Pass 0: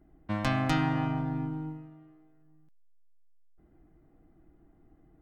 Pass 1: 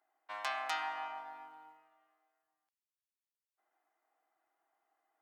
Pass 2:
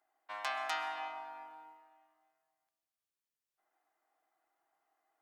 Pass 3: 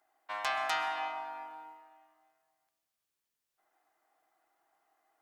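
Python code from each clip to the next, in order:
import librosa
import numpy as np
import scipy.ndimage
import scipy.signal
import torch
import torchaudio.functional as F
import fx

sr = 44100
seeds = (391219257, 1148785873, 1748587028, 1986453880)

y1 = scipy.signal.sosfilt(scipy.signal.cheby1(3, 1.0, 800.0, 'highpass', fs=sr, output='sos'), x)
y1 = y1 * 10.0 ** (-3.5 / 20.0)
y2 = fx.rev_freeverb(y1, sr, rt60_s=1.4, hf_ratio=0.8, predelay_ms=85, drr_db=11.5)
y3 = 10.0 ** (-28.0 / 20.0) * np.tanh(y2 / 10.0 ** (-28.0 / 20.0))
y3 = y3 * 10.0 ** (5.5 / 20.0)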